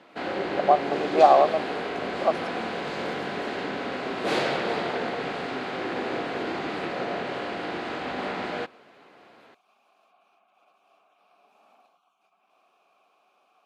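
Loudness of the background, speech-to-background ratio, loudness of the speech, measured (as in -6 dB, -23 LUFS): -30.0 LUFS, 7.5 dB, -22.5 LUFS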